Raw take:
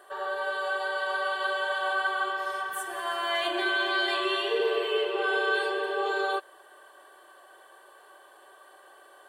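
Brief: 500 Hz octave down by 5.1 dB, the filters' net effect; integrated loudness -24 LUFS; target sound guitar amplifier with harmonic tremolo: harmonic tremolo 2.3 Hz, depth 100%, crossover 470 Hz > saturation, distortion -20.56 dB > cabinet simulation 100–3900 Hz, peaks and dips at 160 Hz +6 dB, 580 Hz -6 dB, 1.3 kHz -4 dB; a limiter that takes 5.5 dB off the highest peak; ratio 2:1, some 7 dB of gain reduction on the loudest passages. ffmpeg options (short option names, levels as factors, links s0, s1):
-filter_complex "[0:a]equalizer=f=500:t=o:g=-4,acompressor=threshold=0.0141:ratio=2,alimiter=level_in=1.68:limit=0.0631:level=0:latency=1,volume=0.596,acrossover=split=470[s0][s1];[s0]aeval=exprs='val(0)*(1-1/2+1/2*cos(2*PI*2.3*n/s))':c=same[s2];[s1]aeval=exprs='val(0)*(1-1/2-1/2*cos(2*PI*2.3*n/s))':c=same[s3];[s2][s3]amix=inputs=2:normalize=0,asoftclip=threshold=0.0251,highpass=100,equalizer=f=160:t=q:w=4:g=6,equalizer=f=580:t=q:w=4:g=-6,equalizer=f=1300:t=q:w=4:g=-4,lowpass=f=3900:w=0.5412,lowpass=f=3900:w=1.3066,volume=9.44"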